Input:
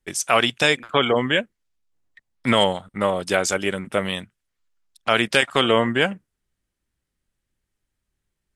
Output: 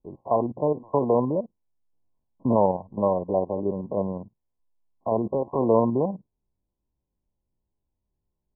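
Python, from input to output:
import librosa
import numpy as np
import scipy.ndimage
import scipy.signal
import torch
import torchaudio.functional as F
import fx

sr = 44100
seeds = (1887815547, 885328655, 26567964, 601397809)

y = fx.spec_steps(x, sr, hold_ms=50)
y = fx.brickwall_lowpass(y, sr, high_hz=1100.0)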